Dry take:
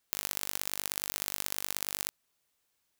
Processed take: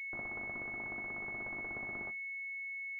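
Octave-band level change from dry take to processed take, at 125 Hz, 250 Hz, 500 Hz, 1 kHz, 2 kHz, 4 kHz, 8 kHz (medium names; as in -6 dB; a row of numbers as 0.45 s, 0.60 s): -1.0 dB, +1.5 dB, -1.0 dB, -4.5 dB, +7.5 dB, under -35 dB, under -40 dB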